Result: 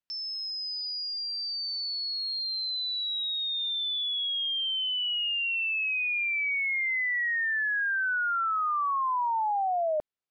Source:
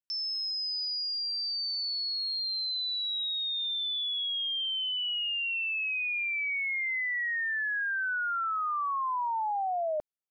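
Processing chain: low-pass 4.4 kHz; trim +3 dB

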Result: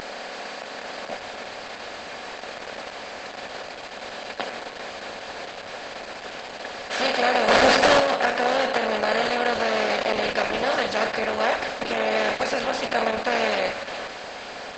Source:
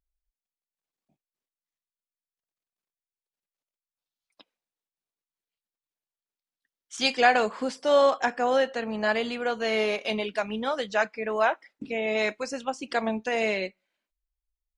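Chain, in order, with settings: spectral levelling over time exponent 0.2; 7.48–8.00 s: waveshaping leveller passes 3; trim -5.5 dB; Opus 10 kbps 48 kHz

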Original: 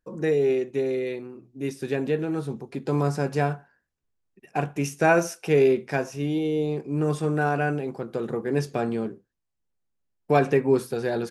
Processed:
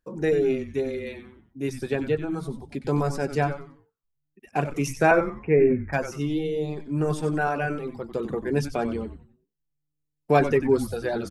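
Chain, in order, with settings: reverb removal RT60 1.4 s; 5.11–5.93 s: steep low-pass 2.4 kHz 72 dB/octave; on a send: frequency-shifting echo 93 ms, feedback 34%, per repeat -150 Hz, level -10 dB; on the sum: trim +1 dB

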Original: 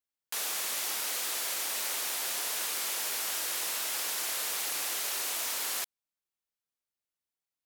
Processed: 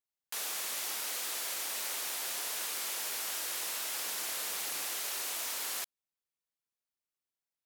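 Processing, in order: 4.00–4.86 s: bass shelf 150 Hz +9.5 dB; trim -3.5 dB

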